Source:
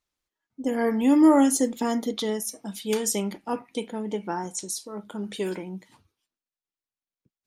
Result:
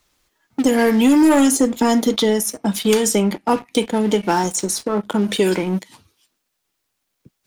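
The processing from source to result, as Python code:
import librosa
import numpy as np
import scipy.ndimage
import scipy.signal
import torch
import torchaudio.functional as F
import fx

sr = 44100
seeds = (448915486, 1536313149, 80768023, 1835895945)

y = fx.leveller(x, sr, passes=2)
y = fx.band_squash(y, sr, depth_pct=70)
y = F.gain(torch.from_numpy(y), 3.0).numpy()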